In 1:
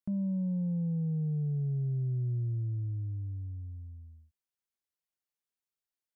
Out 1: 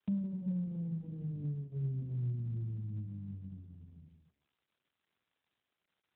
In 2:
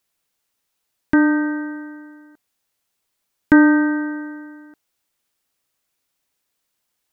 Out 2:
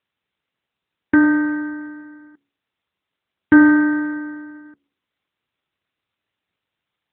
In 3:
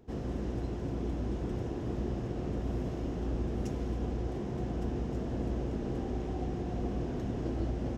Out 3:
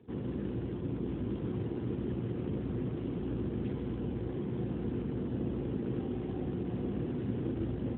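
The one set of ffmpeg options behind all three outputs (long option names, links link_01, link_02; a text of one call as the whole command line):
ffmpeg -i in.wav -af "equalizer=frequency=670:width_type=o:width=0.45:gain=-11,bandreject=frequency=70.34:width_type=h:width=4,bandreject=frequency=140.68:width_type=h:width=4,bandreject=frequency=211.02:width_type=h:width=4,bandreject=frequency=281.36:width_type=h:width=4,bandreject=frequency=351.7:width_type=h:width=4,bandreject=frequency=422.04:width_type=h:width=4,bandreject=frequency=492.38:width_type=h:width=4,bandreject=frequency=562.72:width_type=h:width=4,volume=2dB" -ar 8000 -c:a libopencore_amrnb -b:a 12200 out.amr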